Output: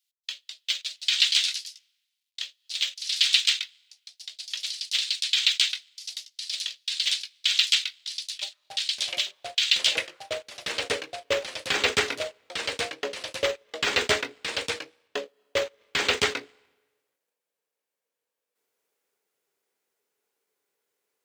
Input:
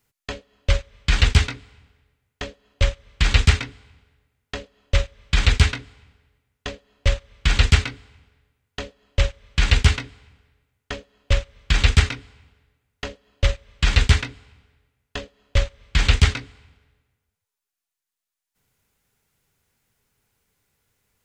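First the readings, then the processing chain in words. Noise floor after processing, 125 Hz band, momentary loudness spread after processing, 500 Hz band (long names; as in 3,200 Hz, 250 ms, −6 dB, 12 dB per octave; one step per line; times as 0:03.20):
below −85 dBFS, −29.5 dB, 15 LU, +1.5 dB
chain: mu-law and A-law mismatch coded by A
high-pass filter sweep 3,500 Hz → 410 Hz, 0:09.89–0:10.41
delay with pitch and tempo change per echo 236 ms, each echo +2 semitones, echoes 3, each echo −6 dB
level −1 dB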